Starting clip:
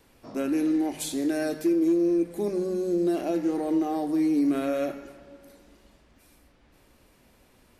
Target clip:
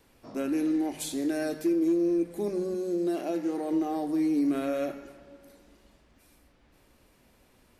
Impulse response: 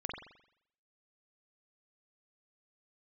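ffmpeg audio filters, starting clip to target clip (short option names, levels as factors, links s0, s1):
-filter_complex "[0:a]asettb=1/sr,asplit=3[s0][s1][s2];[s0]atrim=end=2.744[s3];[s1]atrim=start=2.74:end=3.73,asetpts=PTS-STARTPTS,afade=t=in:d=0.004:c=qsin,afade=t=out:st=0.986:d=0.004:c=qsin,highpass=f=200:p=1[s4];[s2]atrim=start=3.726[s5];[s3][s4]acrossfade=d=0.004:c1=hsin:c2=qsin[s6];[s6][s5]acrossfade=d=0.004:c1=qsin:c2=hsin,volume=0.75"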